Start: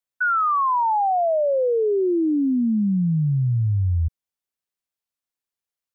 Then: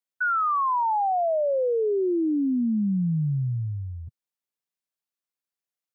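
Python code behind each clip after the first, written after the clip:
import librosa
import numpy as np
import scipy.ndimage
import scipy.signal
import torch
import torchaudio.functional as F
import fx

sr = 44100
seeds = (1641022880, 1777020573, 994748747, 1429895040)

y = scipy.signal.sosfilt(scipy.signal.butter(4, 120.0, 'highpass', fs=sr, output='sos'), x)
y = y * 10.0 ** (-3.5 / 20.0)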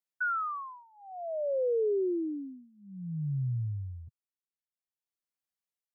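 y = x * (1.0 - 0.98 / 2.0 + 0.98 / 2.0 * np.cos(2.0 * np.pi * 0.55 * (np.arange(len(x)) / sr)))
y = y * 10.0 ** (-4.0 / 20.0)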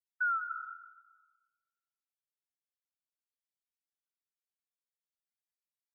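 y = fx.spec_topn(x, sr, count=64)
y = fx.brickwall_highpass(y, sr, low_hz=1300.0)
y = fx.rev_freeverb(y, sr, rt60_s=1.4, hf_ratio=0.55, predelay_ms=115, drr_db=7.5)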